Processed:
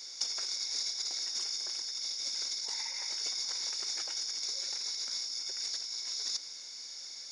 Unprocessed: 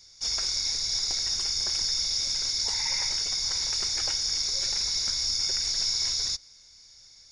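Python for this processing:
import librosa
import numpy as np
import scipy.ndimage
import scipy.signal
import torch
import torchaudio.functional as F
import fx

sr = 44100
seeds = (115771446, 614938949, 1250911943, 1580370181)

y = scipy.signal.sosfilt(scipy.signal.butter(4, 250.0, 'highpass', fs=sr, output='sos'), x)
y = fx.over_compress(y, sr, threshold_db=-34.0, ratio=-0.5)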